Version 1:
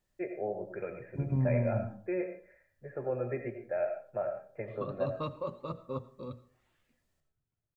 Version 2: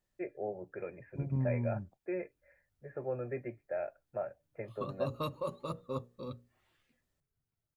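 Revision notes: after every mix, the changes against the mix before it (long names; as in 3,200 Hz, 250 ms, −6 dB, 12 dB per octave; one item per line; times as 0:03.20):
background: remove high-frequency loss of the air 190 metres
reverb: off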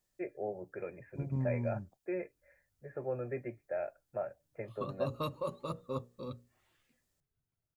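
second voice: add bass and treble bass −2 dB, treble +8 dB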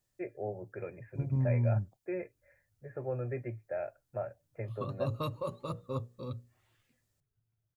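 master: add parametric band 110 Hz +12.5 dB 0.41 octaves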